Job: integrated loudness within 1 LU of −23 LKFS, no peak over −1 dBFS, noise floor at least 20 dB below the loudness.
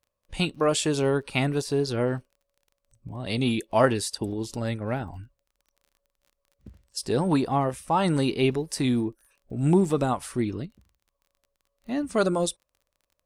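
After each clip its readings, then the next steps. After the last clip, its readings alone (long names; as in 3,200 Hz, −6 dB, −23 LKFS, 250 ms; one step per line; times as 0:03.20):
crackle rate 25 per second; integrated loudness −26.0 LKFS; sample peak −8.0 dBFS; target loudness −23.0 LKFS
→ click removal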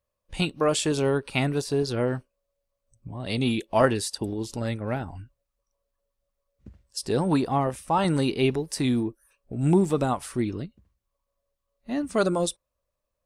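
crackle rate 0 per second; integrated loudness −26.0 LKFS; sample peak −8.0 dBFS; target loudness −23.0 LKFS
→ level +3 dB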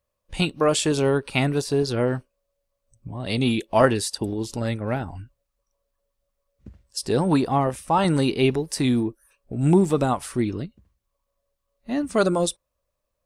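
integrated loudness −23.0 LKFS; sample peak −5.0 dBFS; background noise floor −79 dBFS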